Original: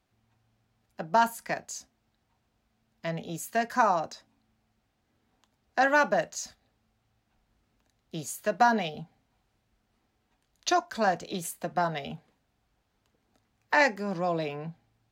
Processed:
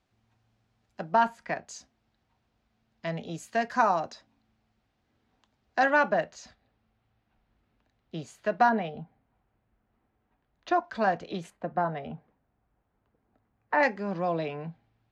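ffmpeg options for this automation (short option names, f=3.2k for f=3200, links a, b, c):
-af "asetnsamples=n=441:p=0,asendcmd='1.13 lowpass f 3000;1.67 lowpass f 5400;5.9 lowpass f 3300;8.69 lowpass f 1800;10.84 lowpass f 3200;11.5 lowpass f 1500;13.83 lowpass f 3500',lowpass=7.3k"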